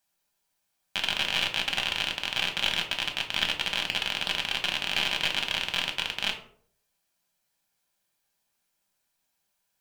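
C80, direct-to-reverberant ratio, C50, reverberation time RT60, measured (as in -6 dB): 14.0 dB, 2.5 dB, 10.0 dB, 0.55 s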